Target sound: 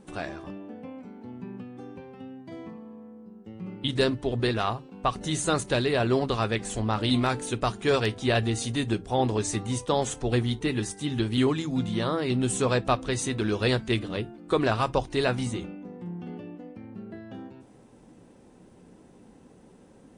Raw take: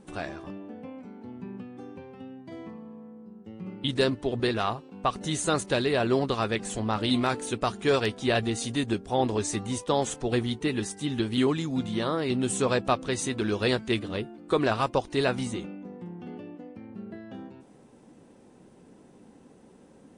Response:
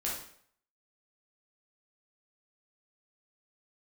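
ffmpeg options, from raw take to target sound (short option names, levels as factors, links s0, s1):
-filter_complex "[0:a]asplit=2[s0][s1];[s1]asubboost=boost=11.5:cutoff=160[s2];[1:a]atrim=start_sample=2205,atrim=end_sample=4410,asetrate=61740,aresample=44100[s3];[s2][s3]afir=irnorm=-1:irlink=0,volume=0.112[s4];[s0][s4]amix=inputs=2:normalize=0"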